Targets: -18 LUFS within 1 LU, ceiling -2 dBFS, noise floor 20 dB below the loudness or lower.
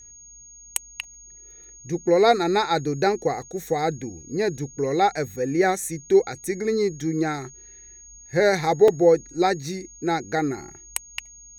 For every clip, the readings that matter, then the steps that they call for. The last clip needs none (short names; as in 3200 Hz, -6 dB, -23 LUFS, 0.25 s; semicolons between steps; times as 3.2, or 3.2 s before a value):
dropouts 1; longest dropout 3.2 ms; steady tone 6600 Hz; tone level -44 dBFS; loudness -23.0 LUFS; peak -4.5 dBFS; loudness target -18.0 LUFS
-> interpolate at 8.88, 3.2 ms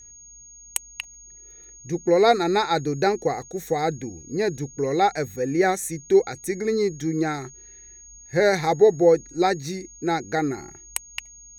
dropouts 0; steady tone 6600 Hz; tone level -44 dBFS
-> notch 6600 Hz, Q 30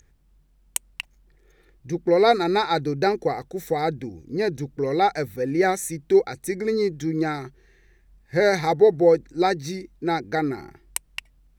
steady tone none; loudness -23.0 LUFS; peak -5.0 dBFS; loudness target -18.0 LUFS
-> gain +5 dB; limiter -2 dBFS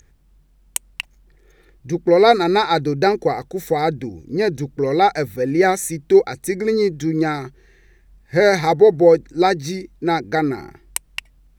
loudness -18.5 LUFS; peak -2.0 dBFS; noise floor -55 dBFS